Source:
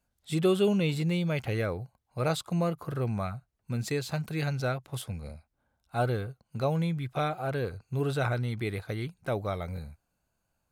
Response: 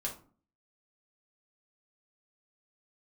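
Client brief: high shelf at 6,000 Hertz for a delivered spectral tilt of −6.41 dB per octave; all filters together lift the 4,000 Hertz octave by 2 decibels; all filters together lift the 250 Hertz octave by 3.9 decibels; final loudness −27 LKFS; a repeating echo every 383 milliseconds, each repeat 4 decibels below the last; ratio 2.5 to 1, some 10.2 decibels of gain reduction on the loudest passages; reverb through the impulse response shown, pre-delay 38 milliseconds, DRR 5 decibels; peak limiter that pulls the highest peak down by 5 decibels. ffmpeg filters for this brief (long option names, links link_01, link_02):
-filter_complex "[0:a]equalizer=frequency=250:width_type=o:gain=6.5,equalizer=frequency=4000:width_type=o:gain=4.5,highshelf=frequency=6000:gain=-7,acompressor=threshold=-33dB:ratio=2.5,alimiter=level_in=2.5dB:limit=-24dB:level=0:latency=1,volume=-2.5dB,aecho=1:1:383|766|1149|1532|1915|2298|2681|3064|3447:0.631|0.398|0.25|0.158|0.0994|0.0626|0.0394|0.0249|0.0157,asplit=2[link_01][link_02];[1:a]atrim=start_sample=2205,adelay=38[link_03];[link_02][link_03]afir=irnorm=-1:irlink=0,volume=-6.5dB[link_04];[link_01][link_04]amix=inputs=2:normalize=0,volume=6.5dB"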